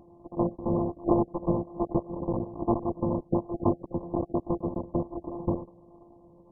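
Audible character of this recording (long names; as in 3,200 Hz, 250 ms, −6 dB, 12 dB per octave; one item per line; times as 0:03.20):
a buzz of ramps at a fixed pitch in blocks of 128 samples
phaser sweep stages 6, 1.2 Hz, lowest notch 750–1,500 Hz
aliases and images of a low sample rate 1,900 Hz, jitter 0%
MP2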